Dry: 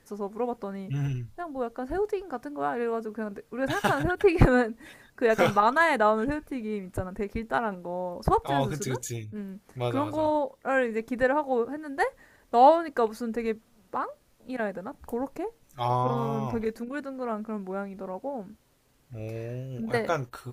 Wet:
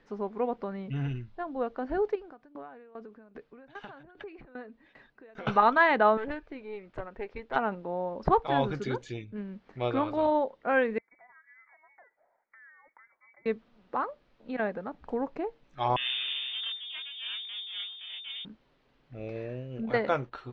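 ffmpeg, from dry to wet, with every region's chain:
-filter_complex "[0:a]asettb=1/sr,asplit=3[s0][s1][s2];[s0]atrim=end=2.154[s3];[s1]atrim=start=2.15:end=5.47,asetpts=PTS-STARTPTS,afade=t=in:d=0.004:c=qsin,afade=t=out:st=3.316:d=0.004:c=qsin,acompressor=threshold=0.0141:ratio=5:attack=3.2:release=140:knee=1:detection=peak,aeval=exprs='val(0)*pow(10,-18*if(lt(mod(2.5*n/s,1),2*abs(2.5)/1000),1-mod(2.5*n/s,1)/(2*abs(2.5)/1000),(mod(2.5*n/s,1)-2*abs(2.5)/1000)/(1-2*abs(2.5)/1000))/20)':c=same[s4];[s2]atrim=start=5.466[s5];[s3][s4]acrossfade=d=0.004:c1=hsin:c2=qsin[s6];[s6][s5]acrossfade=d=0.004:c1=qsin:c2=hsin,asettb=1/sr,asplit=3[s7][s8][s9];[s7]atrim=end=6.174[s10];[s8]atrim=start=6.17:end=7.56,asetpts=PTS-STARTPTS,afade=t=in:d=0.004:c=qsin,afade=t=out:st=1.386:d=0.004:c=qsin,lowpass=11000,equalizer=f=210:w=1.8:g=-11.5,aeval=exprs='(tanh(17.8*val(0)+0.65)-tanh(0.65))/17.8':c=same[s11];[s9]atrim=start=7.556[s12];[s10][s11]acrossfade=d=0.004:c1=hsin:c2=qsin[s13];[s13][s12]acrossfade=d=0.004:c1=qsin:c2=hsin,asettb=1/sr,asplit=3[s14][s15][s16];[s14]atrim=end=10.984[s17];[s15]atrim=start=10.98:end=13.46,asetpts=PTS-STARTPTS,afade=t=in:d=0.004:c=qsin,afade=t=out:st=2.476:d=0.004:c=qsin,aderivative,acompressor=threshold=0.00224:ratio=6:attack=3.2:release=140:knee=1:detection=peak,lowpass=f=2100:t=q:w=0.5098,lowpass=f=2100:t=q:w=0.6013,lowpass=f=2100:t=q:w=0.9,lowpass=f=2100:t=q:w=2.563,afreqshift=-2500[s18];[s16]atrim=start=13.456[s19];[s17][s18]acrossfade=d=0.004:c1=hsin:c2=qsin[s20];[s20][s19]acrossfade=d=0.004:c1=qsin:c2=hsin,asettb=1/sr,asplit=3[s21][s22][s23];[s21]atrim=end=15.964[s24];[s22]atrim=start=15.96:end=18.45,asetpts=PTS-STARTPTS,afade=t=in:d=0.004:c=qsin,afade=t=out:st=2.486:d=0.004:c=qsin,aeval=exprs='max(val(0),0)':c=same,flanger=delay=20:depth=4.7:speed=2.2,lowpass=f=3100:t=q:w=0.5098,lowpass=f=3100:t=q:w=0.6013,lowpass=f=3100:t=q:w=0.9,lowpass=f=3100:t=q:w=2.563,afreqshift=-3600[s25];[s23]atrim=start=18.446[s26];[s24][s25]acrossfade=d=0.004:c1=hsin:c2=qsin[s27];[s27][s26]acrossfade=d=0.004:c1=qsin:c2=hsin,lowpass=f=3900:w=0.5412,lowpass=f=3900:w=1.3066,equalizer=f=85:t=o:w=0.75:g=-13.5"

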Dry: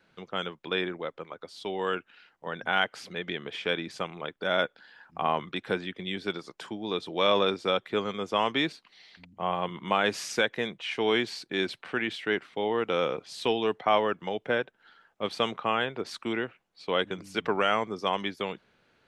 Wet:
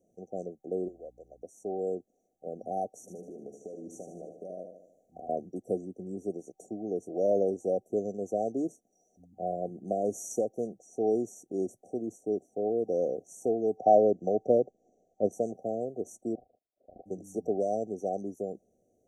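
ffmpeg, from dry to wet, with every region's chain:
-filter_complex "[0:a]asettb=1/sr,asplit=3[s0][s1][s2];[s0]atrim=end=0.884[s3];[s1]atrim=start=0.88:end=1.43,asetpts=PTS-STARTPTS,afade=t=in:d=0.004:c=qsin,afade=t=out:st=0.546:d=0.004:c=qsin,highpass=f=1300:p=1,aeval=exprs='val(0)+0.001*(sin(2*PI*60*n/s)+sin(2*PI*2*60*n/s)/2+sin(2*PI*3*60*n/s)/3+sin(2*PI*4*60*n/s)/4+sin(2*PI*5*60*n/s)/5)':c=same[s4];[s2]atrim=start=1.426[s5];[s3][s4]acrossfade=d=0.004:c1=hsin:c2=qsin[s6];[s6][s5]acrossfade=d=0.004:c1=qsin:c2=hsin,asettb=1/sr,asplit=3[s7][s8][s9];[s7]atrim=end=3.004[s10];[s8]atrim=start=3:end=5.29,asetpts=PTS-STARTPTS,afade=t=in:d=0.004:c=qsin,afade=t=out:st=2.286:d=0.004:c=qsin,acompressor=threshold=0.0158:ratio=5:attack=3.2:release=140:knee=1:detection=peak,aecho=1:1:76|152|228|304|380|456:0.447|0.237|0.125|0.0665|0.0352|0.0187,atrim=end_sample=100989[s11];[s9]atrim=start=5.286[s12];[s10][s11]acrossfade=d=0.004:c1=hsin:c2=qsin[s13];[s13][s12]acrossfade=d=0.004:c1=qsin:c2=hsin,asettb=1/sr,asplit=3[s14][s15][s16];[s14]atrim=end=13.774[s17];[s15]atrim=start=13.77:end=15.32,asetpts=PTS-STARTPTS,afade=t=in:d=0.004:c=qsin,afade=t=out:st=1.546:d=0.004:c=qsin,lowpass=f=6800:w=0.5412,lowpass=f=6800:w=1.3066,acontrast=48[s18];[s16]atrim=start=15.316[s19];[s17][s18]acrossfade=d=0.004:c1=hsin:c2=qsin[s20];[s20][s19]acrossfade=d=0.004:c1=qsin:c2=hsin,asettb=1/sr,asplit=3[s21][s22][s23];[s21]atrim=end=16.354[s24];[s22]atrim=start=16.35:end=17.06,asetpts=PTS-STARTPTS,afade=t=in:d=0.004:c=qsin,afade=t=out:st=0.706:d=0.004:c=qsin,tremolo=f=26:d=0.889,lowpass=f=2500:t=q:w=0.5098,lowpass=f=2500:t=q:w=0.6013,lowpass=f=2500:t=q:w=0.9,lowpass=f=2500:t=q:w=2.563,afreqshift=-2900[s25];[s23]atrim=start=17.056[s26];[s24][s25]acrossfade=d=0.004:c1=hsin:c2=qsin[s27];[s27][s26]acrossfade=d=0.004:c1=qsin:c2=hsin,equalizer=f=150:t=o:w=0.22:g=-13,afftfilt=real='re*(1-between(b*sr/4096,770,5700))':imag='im*(1-between(b*sr/4096,770,5700))':win_size=4096:overlap=0.75,lowshelf=f=100:g=-6"

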